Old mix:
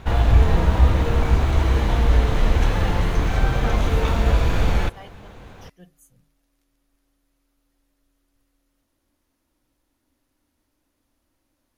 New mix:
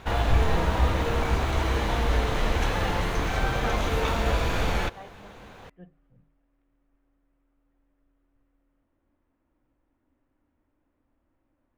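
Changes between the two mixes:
speech: add Gaussian smoothing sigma 3.9 samples
background: add low-shelf EQ 260 Hz −9 dB

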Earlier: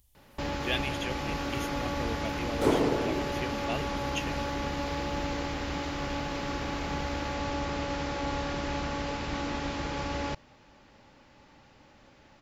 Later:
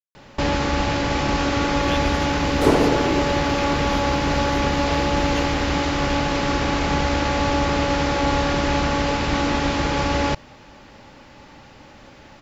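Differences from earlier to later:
speech: entry +1.20 s
first sound +12.0 dB
second sound +7.5 dB

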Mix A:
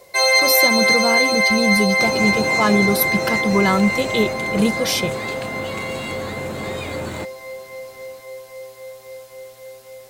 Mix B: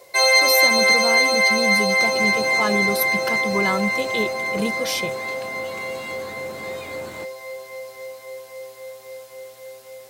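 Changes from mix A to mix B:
speech −4.5 dB
second sound −7.5 dB
master: add low-shelf EQ 150 Hz −9 dB

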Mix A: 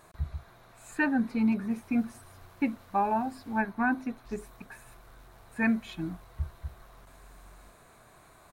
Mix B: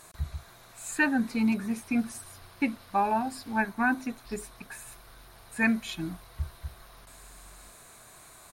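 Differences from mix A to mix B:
background: add linear-phase brick-wall low-pass 5,500 Hz
master: add parametric band 9,000 Hz +13 dB 2.8 octaves

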